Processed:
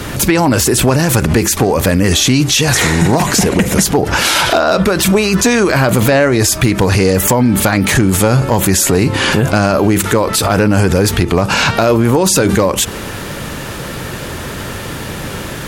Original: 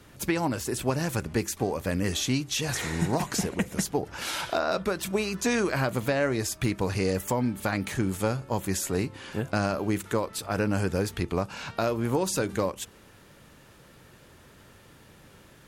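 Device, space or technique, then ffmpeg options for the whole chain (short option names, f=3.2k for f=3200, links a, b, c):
loud club master: -af "acompressor=threshold=-28dB:ratio=2.5,asoftclip=type=hard:threshold=-22dB,alimiter=level_in=32dB:limit=-1dB:release=50:level=0:latency=1,volume=-2.5dB"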